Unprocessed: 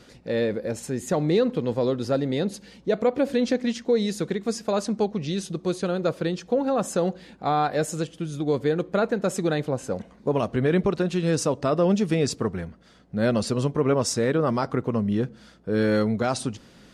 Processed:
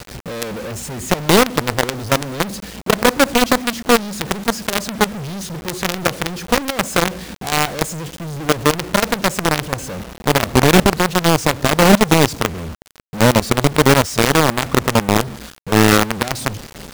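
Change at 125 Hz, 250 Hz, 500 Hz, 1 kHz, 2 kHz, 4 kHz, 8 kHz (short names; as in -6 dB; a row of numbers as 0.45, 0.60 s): +8.0, +6.0, +5.0, +11.5, +15.5, +15.5, +13.0 dB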